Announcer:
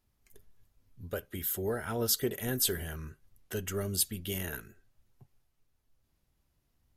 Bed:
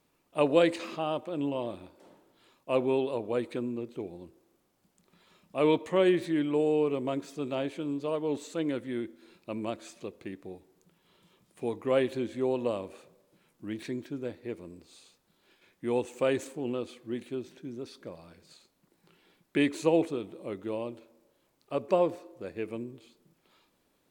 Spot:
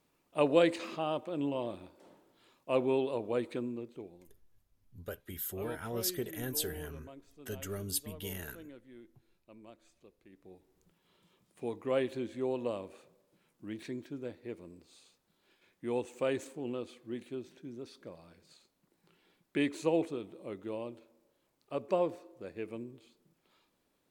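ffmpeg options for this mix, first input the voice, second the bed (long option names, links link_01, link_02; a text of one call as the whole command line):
ffmpeg -i stem1.wav -i stem2.wav -filter_complex "[0:a]adelay=3950,volume=-5.5dB[link_01];[1:a]volume=12dB,afade=type=out:start_time=3.52:duration=0.85:silence=0.141254,afade=type=in:start_time=10.28:duration=0.58:silence=0.188365[link_02];[link_01][link_02]amix=inputs=2:normalize=0" out.wav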